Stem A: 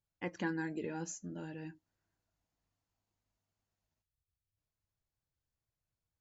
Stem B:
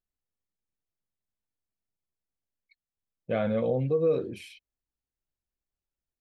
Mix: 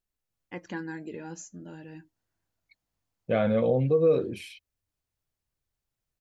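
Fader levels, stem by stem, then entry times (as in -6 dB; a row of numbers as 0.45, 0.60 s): +0.5, +3.0 dB; 0.30, 0.00 s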